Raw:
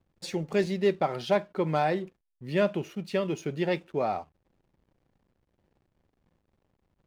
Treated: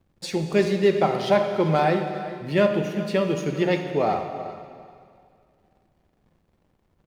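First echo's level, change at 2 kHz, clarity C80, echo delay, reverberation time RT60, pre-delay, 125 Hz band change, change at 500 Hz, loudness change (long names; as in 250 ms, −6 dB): −16.0 dB, +6.0 dB, 7.0 dB, 391 ms, 2.1 s, 6 ms, +7.0 dB, +6.5 dB, +6.0 dB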